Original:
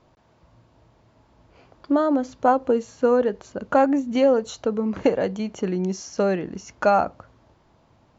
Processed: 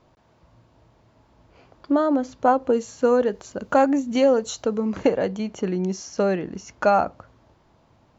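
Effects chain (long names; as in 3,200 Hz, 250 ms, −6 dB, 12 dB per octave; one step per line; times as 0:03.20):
0:02.73–0:05.03: high-shelf EQ 6,200 Hz +12 dB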